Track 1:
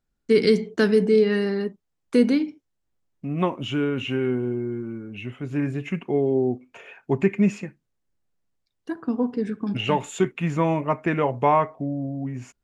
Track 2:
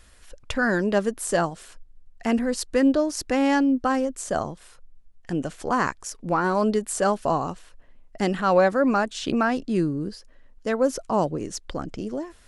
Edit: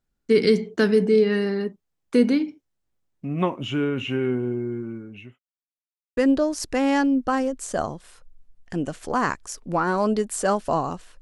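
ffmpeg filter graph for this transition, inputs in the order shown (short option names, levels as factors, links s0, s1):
-filter_complex "[0:a]apad=whole_dur=11.21,atrim=end=11.21,asplit=2[s0][s1];[s0]atrim=end=5.39,asetpts=PTS-STARTPTS,afade=t=out:st=4.79:d=0.6:c=qsin[s2];[s1]atrim=start=5.39:end=6.17,asetpts=PTS-STARTPTS,volume=0[s3];[1:a]atrim=start=2.74:end=7.78,asetpts=PTS-STARTPTS,afade=t=in:d=0.004:c=hsin[s4];[s2][s3][s4]concat=n=3:v=0:a=1"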